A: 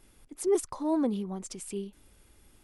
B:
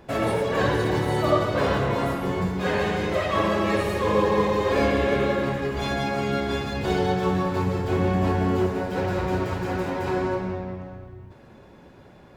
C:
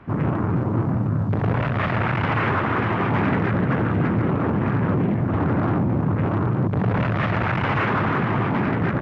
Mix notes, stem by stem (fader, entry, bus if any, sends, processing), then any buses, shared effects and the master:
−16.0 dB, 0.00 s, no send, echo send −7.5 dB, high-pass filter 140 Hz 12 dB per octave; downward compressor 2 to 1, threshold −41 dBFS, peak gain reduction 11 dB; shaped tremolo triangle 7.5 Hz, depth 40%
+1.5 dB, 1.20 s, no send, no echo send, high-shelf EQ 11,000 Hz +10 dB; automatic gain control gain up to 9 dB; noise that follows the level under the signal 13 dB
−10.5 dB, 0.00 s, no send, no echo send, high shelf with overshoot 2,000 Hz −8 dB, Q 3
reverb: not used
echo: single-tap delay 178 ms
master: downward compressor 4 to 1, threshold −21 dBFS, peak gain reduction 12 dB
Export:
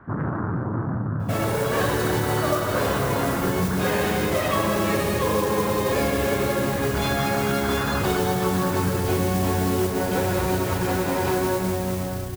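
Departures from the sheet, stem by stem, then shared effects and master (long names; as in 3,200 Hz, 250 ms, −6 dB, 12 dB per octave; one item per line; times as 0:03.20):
stem A: muted
stem C −10.5 dB → −3.5 dB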